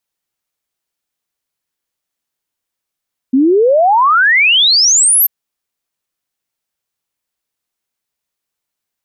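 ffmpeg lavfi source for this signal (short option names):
-f lavfi -i "aevalsrc='0.473*clip(min(t,1.94-t)/0.01,0,1)*sin(2*PI*250*1.94/log(13000/250)*(exp(log(13000/250)*t/1.94)-1))':d=1.94:s=44100"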